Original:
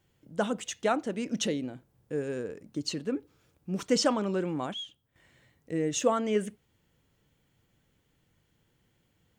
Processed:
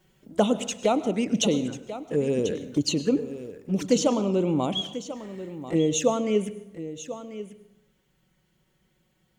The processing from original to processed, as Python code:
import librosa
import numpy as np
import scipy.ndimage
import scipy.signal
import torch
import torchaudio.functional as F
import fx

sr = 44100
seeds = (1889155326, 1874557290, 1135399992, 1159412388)

y = fx.rider(x, sr, range_db=4, speed_s=0.5)
y = fx.env_flanger(y, sr, rest_ms=5.5, full_db=-27.5)
y = y + 10.0 ** (-13.0 / 20.0) * np.pad(y, (int(1041 * sr / 1000.0), 0))[:len(y)]
y = fx.rev_plate(y, sr, seeds[0], rt60_s=0.8, hf_ratio=0.65, predelay_ms=90, drr_db=14.0)
y = y * librosa.db_to_amplitude(7.5)